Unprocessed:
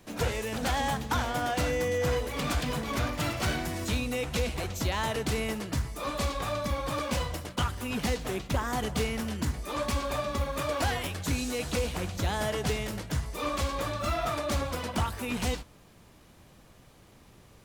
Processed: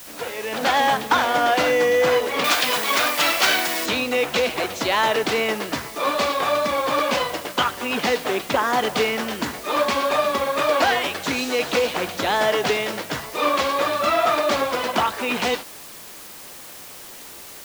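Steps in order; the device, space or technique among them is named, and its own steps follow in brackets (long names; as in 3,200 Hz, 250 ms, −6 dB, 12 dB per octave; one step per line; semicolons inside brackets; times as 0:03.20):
dictaphone (band-pass filter 360–4,500 Hz; automatic gain control gain up to 12.5 dB; tape wow and flutter 26 cents; white noise bed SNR 18 dB)
0:02.44–0:03.86: spectral tilt +3 dB per octave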